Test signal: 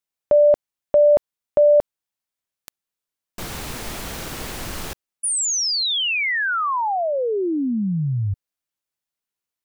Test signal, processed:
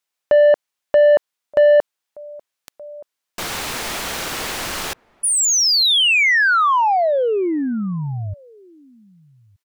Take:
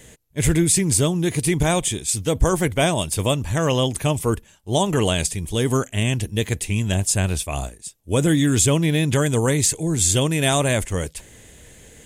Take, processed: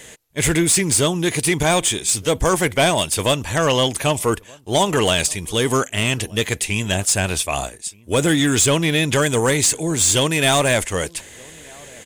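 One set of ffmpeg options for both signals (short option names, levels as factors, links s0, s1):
-filter_complex "[0:a]asplit=2[s0][s1];[s1]adelay=1224,volume=0.0447,highshelf=f=4000:g=-27.6[s2];[s0][s2]amix=inputs=2:normalize=0,asplit=2[s3][s4];[s4]highpass=f=720:p=1,volume=5.01,asoftclip=type=tanh:threshold=0.501[s5];[s3][s5]amix=inputs=2:normalize=0,lowpass=f=7500:p=1,volume=0.501"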